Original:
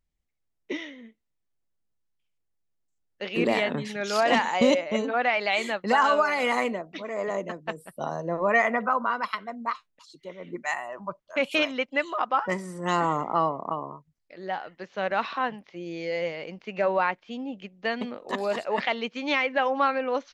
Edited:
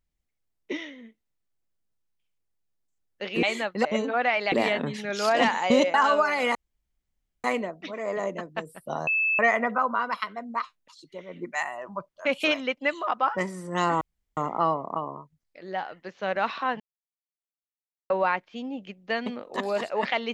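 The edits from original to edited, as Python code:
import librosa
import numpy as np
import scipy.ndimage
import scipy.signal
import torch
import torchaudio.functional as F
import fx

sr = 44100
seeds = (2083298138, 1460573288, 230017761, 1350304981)

y = fx.edit(x, sr, fx.swap(start_s=3.43, length_s=1.42, other_s=5.52, other_length_s=0.42),
    fx.insert_room_tone(at_s=6.55, length_s=0.89),
    fx.bleep(start_s=8.18, length_s=0.32, hz=2620.0, db=-21.0),
    fx.insert_room_tone(at_s=13.12, length_s=0.36),
    fx.silence(start_s=15.55, length_s=1.3), tone=tone)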